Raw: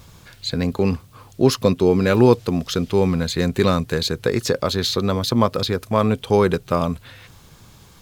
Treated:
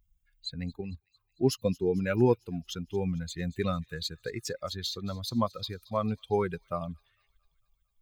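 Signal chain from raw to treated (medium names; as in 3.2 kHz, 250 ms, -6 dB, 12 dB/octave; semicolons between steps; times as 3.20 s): expander on every frequency bin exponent 2; 0.81–1.41 s: level held to a coarse grid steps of 10 dB; feedback echo behind a high-pass 225 ms, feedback 60%, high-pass 3.3 kHz, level -19 dB; trim -7.5 dB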